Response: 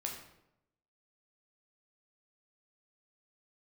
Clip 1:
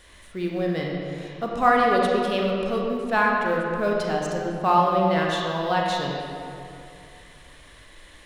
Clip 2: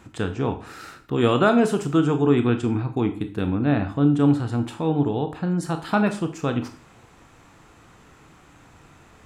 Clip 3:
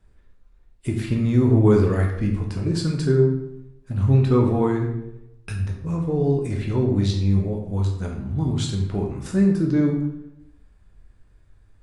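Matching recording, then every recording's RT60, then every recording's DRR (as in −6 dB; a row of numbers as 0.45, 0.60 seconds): 3; 2.5, 0.45, 0.85 seconds; −2.0, 7.0, 0.0 decibels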